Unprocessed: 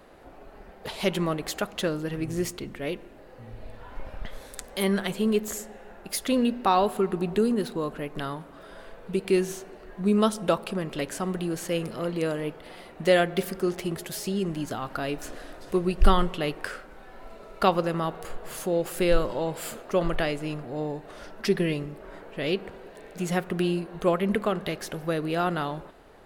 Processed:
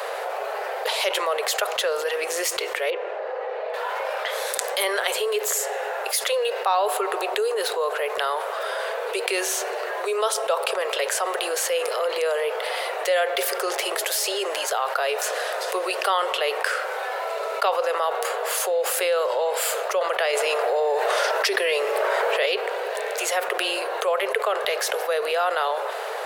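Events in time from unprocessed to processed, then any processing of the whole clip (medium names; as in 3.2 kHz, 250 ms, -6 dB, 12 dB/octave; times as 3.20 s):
2.90–3.74 s: tape spacing loss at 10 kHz 33 dB
20.33–22.46 s: level flattener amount 70%
whole clip: steep high-pass 440 Hz 72 dB/octave; level flattener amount 70%; trim -2 dB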